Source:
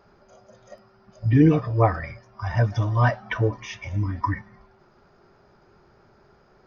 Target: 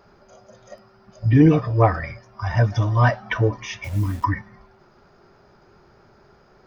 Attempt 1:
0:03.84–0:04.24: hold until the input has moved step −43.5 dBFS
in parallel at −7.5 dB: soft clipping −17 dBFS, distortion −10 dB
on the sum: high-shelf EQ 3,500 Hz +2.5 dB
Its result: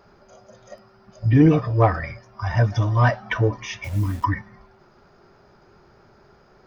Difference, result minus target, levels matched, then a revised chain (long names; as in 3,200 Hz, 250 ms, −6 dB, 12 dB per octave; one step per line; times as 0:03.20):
soft clipping: distortion +7 dB
0:03.84–0:04.24: hold until the input has moved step −43.5 dBFS
in parallel at −7.5 dB: soft clipping −10.5 dBFS, distortion −18 dB
on the sum: high-shelf EQ 3,500 Hz +2.5 dB